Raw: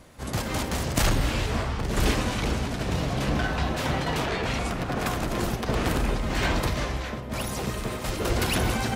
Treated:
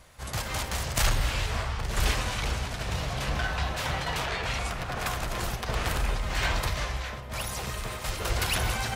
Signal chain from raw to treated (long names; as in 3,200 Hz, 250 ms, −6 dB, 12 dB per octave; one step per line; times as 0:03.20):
parametric band 270 Hz −13.5 dB 1.7 octaves